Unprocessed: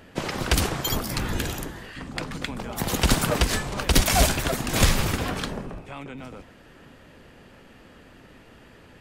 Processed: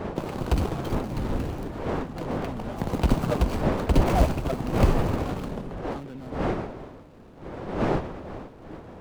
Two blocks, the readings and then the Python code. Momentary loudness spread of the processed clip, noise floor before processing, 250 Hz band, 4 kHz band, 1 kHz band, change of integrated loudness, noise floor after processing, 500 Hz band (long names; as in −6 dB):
16 LU, −51 dBFS, +2.0 dB, −14.0 dB, −0.5 dB, −3.0 dB, −47 dBFS, +2.5 dB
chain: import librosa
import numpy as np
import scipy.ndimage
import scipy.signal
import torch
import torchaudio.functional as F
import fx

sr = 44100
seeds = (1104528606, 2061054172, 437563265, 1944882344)

y = scipy.ndimage.median_filter(x, 25, mode='constant')
y = fx.dmg_wind(y, sr, seeds[0], corner_hz=550.0, level_db=-32.0)